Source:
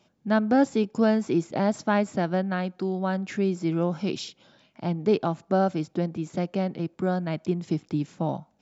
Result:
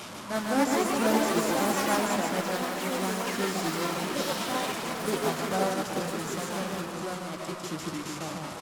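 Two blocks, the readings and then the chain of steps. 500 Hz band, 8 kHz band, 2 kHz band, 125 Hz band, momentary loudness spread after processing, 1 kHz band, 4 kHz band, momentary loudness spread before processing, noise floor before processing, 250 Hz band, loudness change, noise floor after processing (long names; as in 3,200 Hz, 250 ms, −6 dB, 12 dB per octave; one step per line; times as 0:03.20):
−3.0 dB, can't be measured, +3.0 dB, −8.0 dB, 10 LU, +1.0 dB, +7.5 dB, 8 LU, −67 dBFS, −5.5 dB, −2.5 dB, −40 dBFS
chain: linear delta modulator 64 kbit/s, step −24 dBFS
noise in a band 920–1,400 Hz −39 dBFS
low-shelf EQ 76 Hz −8 dB
single-tap delay 150 ms −3 dB
flanger 0.61 Hz, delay 8.4 ms, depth 8.1 ms, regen −50%
low-shelf EQ 370 Hz −3.5 dB
delay with pitch and tempo change per echo 355 ms, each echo +5 semitones, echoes 3
on a send: delay that swaps between a low-pass and a high-pass 347 ms, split 1,300 Hz, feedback 58%, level −7 dB
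on the sum: expander for the loud parts 1.5 to 1, over −33 dBFS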